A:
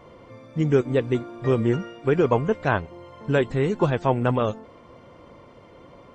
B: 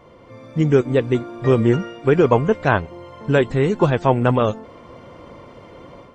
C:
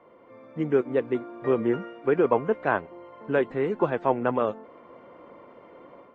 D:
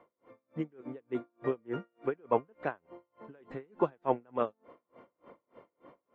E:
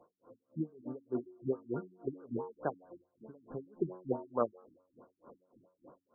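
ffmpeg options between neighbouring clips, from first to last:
-af "dynaudnorm=f=240:g=3:m=2.24"
-filter_complex "[0:a]acrossover=split=210 2600:gain=0.126 1 0.0794[s0][s1][s2];[s0][s1][s2]amix=inputs=3:normalize=0,volume=0.501"
-af "aeval=exprs='val(0)*pow(10,-35*(0.5-0.5*cos(2*PI*3.4*n/s))/20)':c=same,volume=0.668"
-af "bandreject=f=91.76:t=h:w=4,bandreject=f=183.52:t=h:w=4,bandreject=f=275.28:t=h:w=4,bandreject=f=367.04:t=h:w=4,bandreject=f=458.8:t=h:w=4,bandreject=f=550.56:t=h:w=4,bandreject=f=642.32:t=h:w=4,bandreject=f=734.08:t=h:w=4,bandreject=f=825.84:t=h:w=4,bandreject=f=917.6:t=h:w=4,bandreject=f=1009.36:t=h:w=4,bandreject=f=1101.12:t=h:w=4,bandreject=f=1192.88:t=h:w=4,bandreject=f=1284.64:t=h:w=4,bandreject=f=1376.4:t=h:w=4,bandreject=f=1468.16:t=h:w=4,bandreject=f=1559.92:t=h:w=4,bandreject=f=1651.68:t=h:w=4,bandreject=f=1743.44:t=h:w=4,bandreject=f=1835.2:t=h:w=4,bandreject=f=1926.96:t=h:w=4,bandreject=f=2018.72:t=h:w=4,bandreject=f=2110.48:t=h:w=4,bandreject=f=2202.24:t=h:w=4,bandreject=f=2294:t=h:w=4,bandreject=f=2385.76:t=h:w=4,bandreject=f=2477.52:t=h:w=4,bandreject=f=2569.28:t=h:w=4,bandreject=f=2661.04:t=h:w=4,bandreject=f=2752.8:t=h:w=4,bandreject=f=2844.56:t=h:w=4,bandreject=f=2936.32:t=h:w=4,bandreject=f=3028.08:t=h:w=4,bandreject=f=3119.84:t=h:w=4,bandreject=f=3211.6:t=h:w=4,bandreject=f=3303.36:t=h:w=4,bandreject=f=3395.12:t=h:w=4,bandreject=f=3486.88:t=h:w=4,bandreject=f=3578.64:t=h:w=4,bandreject=f=3670.4:t=h:w=4,afftfilt=real='re*lt(b*sr/1024,310*pow(1700/310,0.5+0.5*sin(2*PI*4.6*pts/sr)))':imag='im*lt(b*sr/1024,310*pow(1700/310,0.5+0.5*sin(2*PI*4.6*pts/sr)))':win_size=1024:overlap=0.75"

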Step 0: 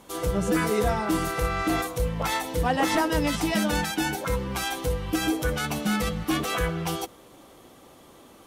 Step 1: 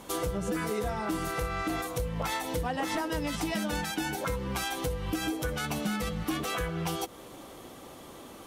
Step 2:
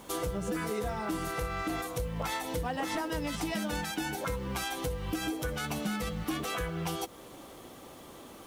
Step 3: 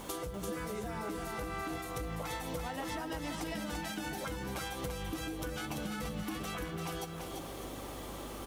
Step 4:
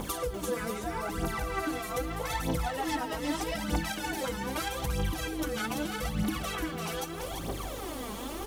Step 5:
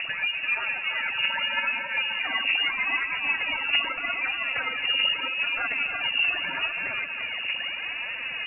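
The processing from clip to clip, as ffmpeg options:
-af "acompressor=threshold=0.0224:ratio=6,volume=1.58"
-af "acrusher=bits=9:mix=0:aa=0.000001,volume=0.794"
-filter_complex "[0:a]aeval=exprs='val(0)+0.00141*(sin(2*PI*50*n/s)+sin(2*PI*2*50*n/s)/2+sin(2*PI*3*50*n/s)/3+sin(2*PI*4*50*n/s)/4+sin(2*PI*5*50*n/s)/5)':c=same,acompressor=threshold=0.00794:ratio=5,asplit=2[s0][s1];[s1]aecho=0:1:340|598:0.562|0.224[s2];[s0][s2]amix=inputs=2:normalize=0,volume=1.58"
-af "aphaser=in_gain=1:out_gain=1:delay=4.8:decay=0.65:speed=0.8:type=triangular,volume=1.5"
-af "lowpass=f=2500:t=q:w=0.5098,lowpass=f=2500:t=q:w=0.6013,lowpass=f=2500:t=q:w=0.9,lowpass=f=2500:t=q:w=2.563,afreqshift=-2900,volume=1.88"

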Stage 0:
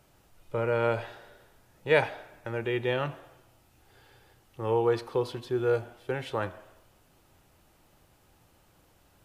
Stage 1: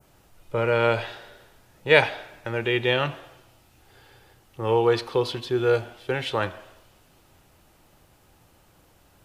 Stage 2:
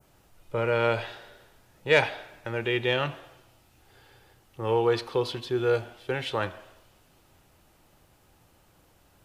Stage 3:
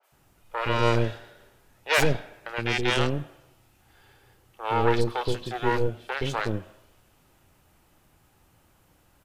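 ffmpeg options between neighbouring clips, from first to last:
-af "adynamicequalizer=threshold=0.00316:dfrequency=3500:dqfactor=0.77:tfrequency=3500:tqfactor=0.77:attack=5:release=100:ratio=0.375:range=4:mode=boostabove:tftype=bell,volume=1.68"
-af "asoftclip=type=tanh:threshold=0.562,volume=0.708"
-filter_complex "[0:a]aeval=exprs='0.376*(cos(1*acos(clip(val(0)/0.376,-1,1)))-cos(1*PI/2))+0.106*(cos(6*acos(clip(val(0)/0.376,-1,1)))-cos(6*PI/2))':c=same,acrossover=split=530|4400[s0][s1][s2];[s2]adelay=30[s3];[s0]adelay=120[s4];[s4][s1][s3]amix=inputs=3:normalize=0"

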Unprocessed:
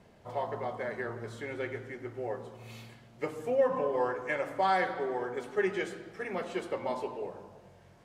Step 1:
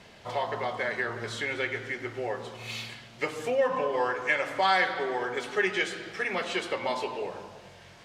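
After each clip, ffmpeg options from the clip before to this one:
-filter_complex "[0:a]equalizer=f=3600:w=0.39:g=14,asplit=2[s0][s1];[s1]acompressor=threshold=0.0224:ratio=6,volume=1.26[s2];[s0][s2]amix=inputs=2:normalize=0,volume=0.631"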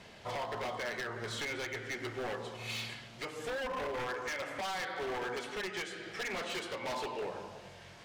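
-af "alimiter=limit=0.075:level=0:latency=1:release=450,aeval=exprs='0.0316*(abs(mod(val(0)/0.0316+3,4)-2)-1)':c=same,volume=0.841"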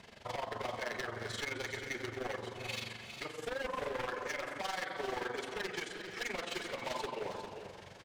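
-af "tremolo=f=23:d=0.788,aecho=1:1:331|404:0.178|0.335,volume=1.19"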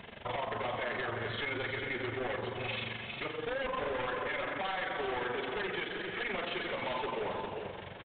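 -af "asoftclip=type=hard:threshold=0.0112,aresample=8000,aresample=44100,volume=2.24"

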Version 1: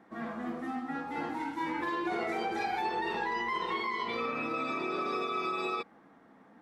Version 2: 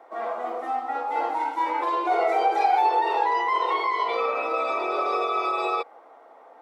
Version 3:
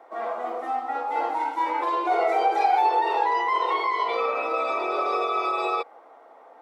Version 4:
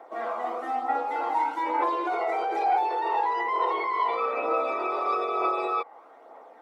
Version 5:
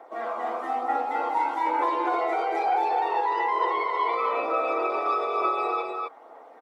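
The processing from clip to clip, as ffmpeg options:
-af "highpass=f=420:w=0.5412,highpass=f=420:w=1.3066,equalizer=f=670:w=0.85:g=11.5,bandreject=f=1700:w=6.4,volume=1.5"
-af anull
-filter_complex "[0:a]acrossover=split=2300[s0][s1];[s0]alimiter=limit=0.106:level=0:latency=1:release=20[s2];[s1]acompressor=threshold=0.00355:ratio=6[s3];[s2][s3]amix=inputs=2:normalize=0,aphaser=in_gain=1:out_gain=1:delay=1.1:decay=0.34:speed=1.1:type=triangular"
-af "aecho=1:1:255:0.596"

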